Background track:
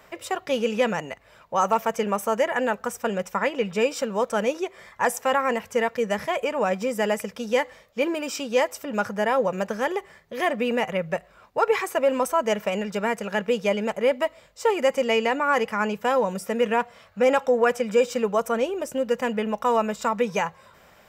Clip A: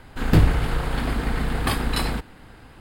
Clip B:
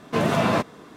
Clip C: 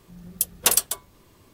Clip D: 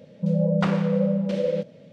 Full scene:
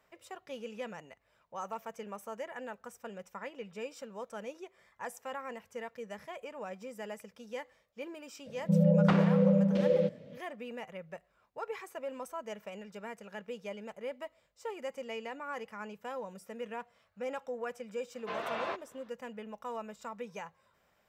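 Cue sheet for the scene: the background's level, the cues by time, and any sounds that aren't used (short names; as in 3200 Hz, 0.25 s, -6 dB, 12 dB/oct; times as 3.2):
background track -18.5 dB
8.46 add D -2.5 dB + high shelf 4000 Hz -6.5 dB
18.14 add B -12 dB + three-band isolator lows -21 dB, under 460 Hz, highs -23 dB, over 4700 Hz
not used: A, C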